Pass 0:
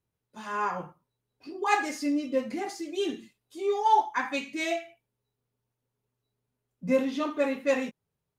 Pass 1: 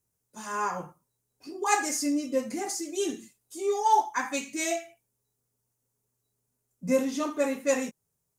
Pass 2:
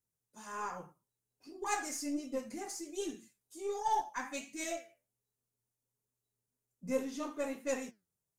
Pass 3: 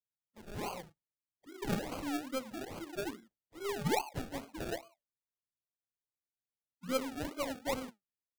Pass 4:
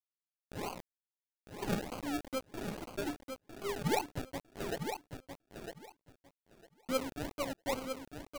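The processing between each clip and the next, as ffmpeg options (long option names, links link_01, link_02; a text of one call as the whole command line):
ffmpeg -i in.wav -af "highshelf=frequency=5000:width_type=q:width=1.5:gain=11" out.wav
ffmpeg -i in.wav -af "flanger=delay=2.9:depth=9.3:regen=79:speed=1.3:shape=triangular,aeval=exprs='0.2*(cos(1*acos(clip(val(0)/0.2,-1,1)))-cos(1*PI/2))+0.00501*(cos(8*acos(clip(val(0)/0.2,-1,1)))-cos(8*PI/2))':channel_layout=same,volume=-5.5dB" out.wav
ffmpeg -i in.wav -af "afftdn=noise_reduction=23:noise_floor=-54,acrusher=samples=34:mix=1:aa=0.000001:lfo=1:lforange=20.4:lforate=2.4" out.wav
ffmpeg -i in.wav -af "aeval=exprs='val(0)*gte(abs(val(0)),0.0106)':channel_layout=same,aecho=1:1:954|1908|2862:0.447|0.0804|0.0145" out.wav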